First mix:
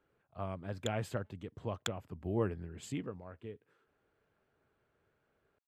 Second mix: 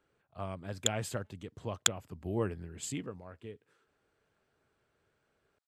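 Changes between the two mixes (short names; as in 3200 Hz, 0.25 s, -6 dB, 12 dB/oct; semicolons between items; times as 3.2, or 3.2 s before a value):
background +6.0 dB; master: add bell 8500 Hz +11 dB 2.1 oct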